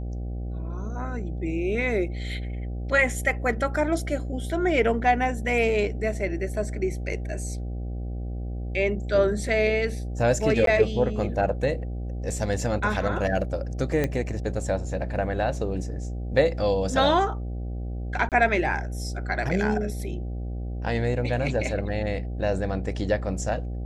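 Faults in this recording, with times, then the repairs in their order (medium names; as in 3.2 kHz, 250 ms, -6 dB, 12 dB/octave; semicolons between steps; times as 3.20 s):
buzz 60 Hz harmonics 13 -31 dBFS
10.66–10.67 s: dropout 12 ms
14.04 s: pop -12 dBFS
18.29–18.32 s: dropout 28 ms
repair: de-click; de-hum 60 Hz, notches 13; interpolate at 10.66 s, 12 ms; interpolate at 18.29 s, 28 ms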